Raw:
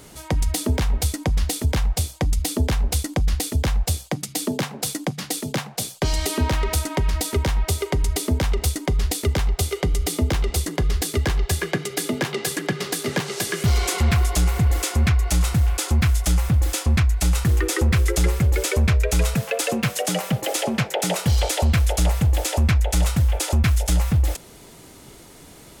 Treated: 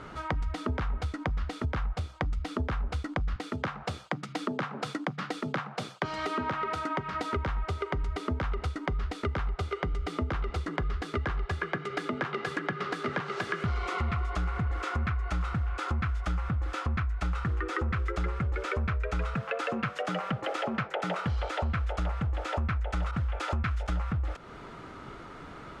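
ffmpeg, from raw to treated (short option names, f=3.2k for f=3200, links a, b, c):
-filter_complex "[0:a]asettb=1/sr,asplit=3[a][b][c];[a]atrim=end=3.364[d];[b]atrim=start=3.36:end=7.24,asetpts=PTS-STARTPTS,afade=t=in:d=0.004:c=qsin,afade=t=out:st=3.876:d=0.004:c=qsin,highpass=f=120:w=0.5412,highpass=f=120:w=1.3066[e];[c]atrim=start=7.236[f];[d][e]acrossfade=d=0.004:c1=hsin:c2=qsin[g];[g][f]acrossfade=d=0.004:c1=qsin:c2=hsin,asettb=1/sr,asplit=3[h][i][j];[h]atrim=end=13.784[k];[i]atrim=start=13.78:end=14.31,asetpts=PTS-STARTPTS,afade=t=in:d=0.004:c=qsin,afade=t=out:st=0.526:d=0.004:c=qsin,bandreject=f=1.6k:w=6[l];[j]atrim=start=14.306[m];[k][l]acrossfade=d=0.004:c1=hsin:c2=qsin[n];[n][m]acrossfade=d=0.004:c1=qsin:c2=hsin,asettb=1/sr,asplit=3[o][p][q];[o]atrim=end=23.114[r];[p]atrim=start=23.11:end=23.87,asetpts=PTS-STARTPTS,afade=t=in:d=0.004:c=qsin,afade=t=out:st=0.756:d=0.004:c=qsin,adynamicequalizer=threshold=0.0126:dfrequency=1500:dqfactor=0.7:tfrequency=1500:tqfactor=0.7:attack=5:release=100:ratio=0.375:range=1.5:mode=boostabove:tftype=highshelf[s];[q]atrim=start=23.866[t];[r][s]acrossfade=d=0.004:c1=hsin:c2=qsin[u];[u][t]acrossfade=d=0.004:c1=qsin:c2=hsin,lowpass=2.6k,equalizer=f=1.3k:t=o:w=0.58:g=13,acompressor=threshold=-30dB:ratio=4"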